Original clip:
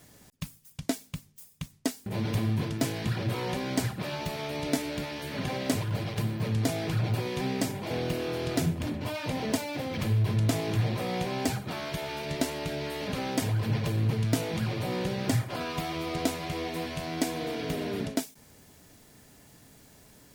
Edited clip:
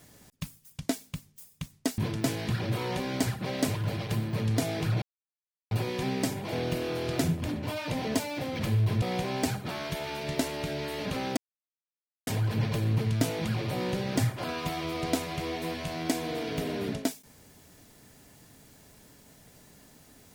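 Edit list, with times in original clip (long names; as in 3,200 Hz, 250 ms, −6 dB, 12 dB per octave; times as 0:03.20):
0:01.98–0:02.55: remove
0:04.03–0:05.53: remove
0:07.09: splice in silence 0.69 s
0:10.40–0:11.04: remove
0:13.39: splice in silence 0.90 s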